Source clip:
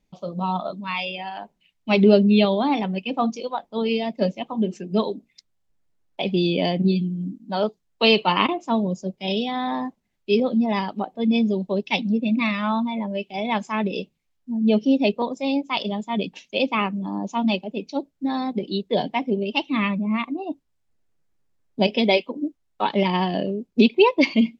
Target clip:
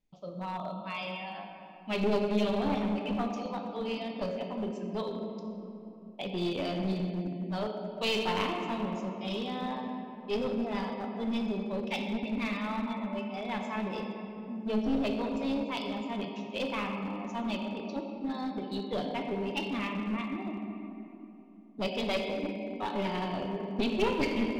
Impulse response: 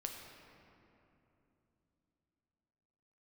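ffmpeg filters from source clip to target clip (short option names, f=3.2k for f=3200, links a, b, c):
-filter_complex "[1:a]atrim=start_sample=2205[a];[0:a][a]afir=irnorm=-1:irlink=0,aeval=exprs='clip(val(0),-1,0.075)':c=same,volume=-8dB"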